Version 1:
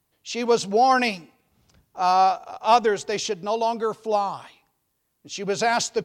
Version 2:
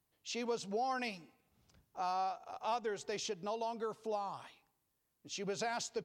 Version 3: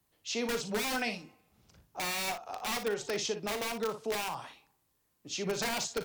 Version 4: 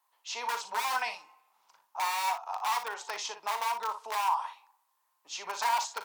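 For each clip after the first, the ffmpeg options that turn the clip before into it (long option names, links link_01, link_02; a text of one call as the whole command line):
ffmpeg -i in.wav -af "acompressor=threshold=-29dB:ratio=2.5,volume=-9dB" out.wav
ffmpeg -i in.wav -filter_complex "[0:a]acrossover=split=150|440|1400[link_01][link_02][link_03][link_04];[link_03]aeval=exprs='(mod(66.8*val(0)+1,2)-1)/66.8':channel_layout=same[link_05];[link_01][link_02][link_05][link_04]amix=inputs=4:normalize=0,aecho=1:1:39|58:0.282|0.282,volume=6dB" out.wav
ffmpeg -i in.wav -af "highpass=frequency=950:width_type=q:width=7.3,volume=-2dB" out.wav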